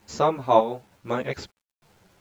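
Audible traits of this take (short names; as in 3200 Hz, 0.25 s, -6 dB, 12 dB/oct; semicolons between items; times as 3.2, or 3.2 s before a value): chopped level 1.1 Hz, depth 60%, duty 65%; a quantiser's noise floor 10-bit, dither none; a shimmering, thickened sound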